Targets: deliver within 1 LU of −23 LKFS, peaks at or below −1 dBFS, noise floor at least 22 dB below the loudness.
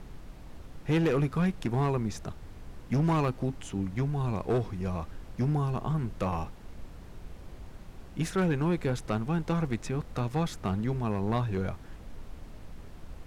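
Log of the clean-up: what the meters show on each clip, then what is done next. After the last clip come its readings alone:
share of clipped samples 1.6%; peaks flattened at −21.5 dBFS; background noise floor −47 dBFS; target noise floor −53 dBFS; integrated loudness −30.5 LKFS; sample peak −21.5 dBFS; target loudness −23.0 LKFS
→ clipped peaks rebuilt −21.5 dBFS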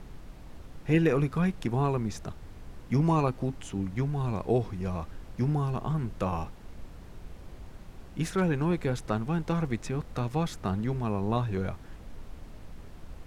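share of clipped samples 0.0%; background noise floor −47 dBFS; target noise floor −52 dBFS
→ noise reduction from a noise print 6 dB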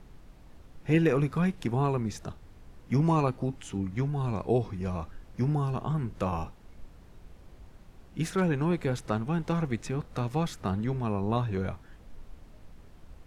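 background noise floor −53 dBFS; integrated loudness −30.0 LKFS; sample peak −13.0 dBFS; target loudness −23.0 LKFS
→ level +7 dB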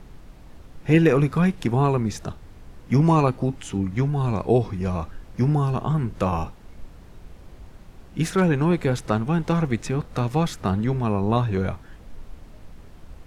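integrated loudness −23.0 LKFS; sample peak −6.0 dBFS; background noise floor −46 dBFS

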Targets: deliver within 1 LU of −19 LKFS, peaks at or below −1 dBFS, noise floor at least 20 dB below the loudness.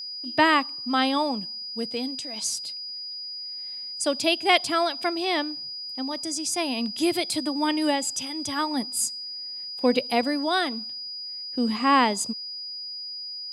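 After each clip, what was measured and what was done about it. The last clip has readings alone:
interfering tone 4,900 Hz; level of the tone −33 dBFS; integrated loudness −26.0 LKFS; sample peak −4.5 dBFS; target loudness −19.0 LKFS
→ notch filter 4,900 Hz, Q 30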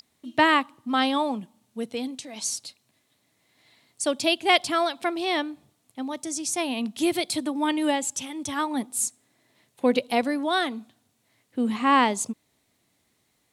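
interfering tone none found; integrated loudness −25.5 LKFS; sample peak −5.0 dBFS; target loudness −19.0 LKFS
→ level +6.5 dB
brickwall limiter −1 dBFS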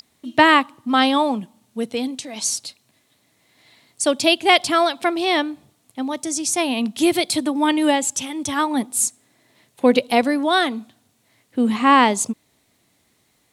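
integrated loudness −19.5 LKFS; sample peak −1.0 dBFS; background noise floor −64 dBFS

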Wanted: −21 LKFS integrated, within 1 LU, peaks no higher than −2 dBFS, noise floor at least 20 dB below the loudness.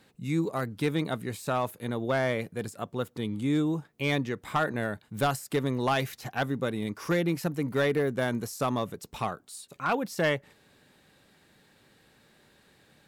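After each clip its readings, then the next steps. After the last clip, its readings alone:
share of clipped samples 0.4%; peaks flattened at −19.0 dBFS; integrated loudness −30.0 LKFS; sample peak −19.0 dBFS; target loudness −21.0 LKFS
→ clipped peaks rebuilt −19 dBFS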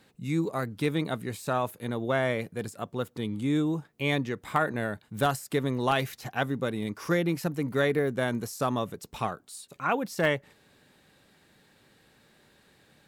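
share of clipped samples 0.0%; integrated loudness −29.5 LKFS; sample peak −11.0 dBFS; target loudness −21.0 LKFS
→ level +8.5 dB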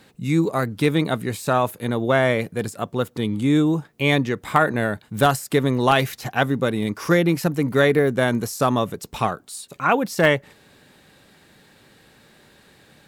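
integrated loudness −21.0 LKFS; sample peak −2.5 dBFS; background noise floor −54 dBFS

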